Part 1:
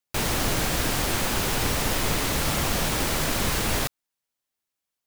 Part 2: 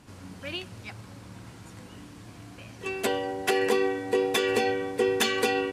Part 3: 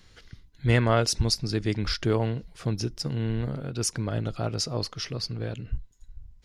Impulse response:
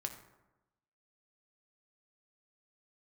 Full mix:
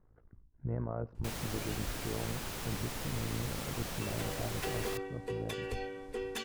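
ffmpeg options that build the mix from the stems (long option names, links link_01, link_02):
-filter_complex "[0:a]adelay=1100,volume=-15.5dB[link_01];[1:a]asoftclip=type=hard:threshold=-17dB,adelay=1150,volume=-14dB[link_02];[2:a]lowpass=frequency=1100:width=0.5412,lowpass=frequency=1100:width=1.3066,tremolo=f=55:d=0.824,volume=-5.5dB,asplit=2[link_03][link_04];[link_04]volume=-22.5dB[link_05];[link_02][link_03]amix=inputs=2:normalize=0,alimiter=level_in=4dB:limit=-24dB:level=0:latency=1:release=36,volume=-4dB,volume=0dB[link_06];[3:a]atrim=start_sample=2205[link_07];[link_05][link_07]afir=irnorm=-1:irlink=0[link_08];[link_01][link_06][link_08]amix=inputs=3:normalize=0"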